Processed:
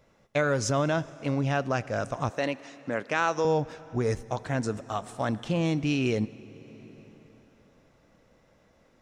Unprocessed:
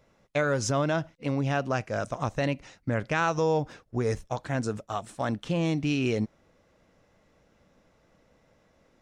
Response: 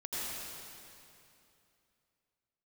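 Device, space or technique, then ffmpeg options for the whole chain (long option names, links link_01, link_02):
compressed reverb return: -filter_complex "[0:a]asplit=2[link_01][link_02];[1:a]atrim=start_sample=2205[link_03];[link_02][link_03]afir=irnorm=-1:irlink=0,acompressor=threshold=-30dB:ratio=6,volume=-13dB[link_04];[link_01][link_04]amix=inputs=2:normalize=0,asettb=1/sr,asplit=3[link_05][link_06][link_07];[link_05]atrim=end=2.304[link_08];[link_06]atrim=start=2.3:end=3.45,asetpts=PTS-STARTPTS,afade=type=in:duration=0.004:curve=qsin,afade=type=out:start_time=1.146:duration=0.004:curve=qsin,highpass=270[link_09];[link_07]atrim=start=3.446[link_10];[link_08][link_09]acrossfade=duration=0.004:curve1=hsin:curve2=qsin[link_11];[link_11][link_10]acrossfade=duration=0.004:curve1=qsin:curve2=hsin"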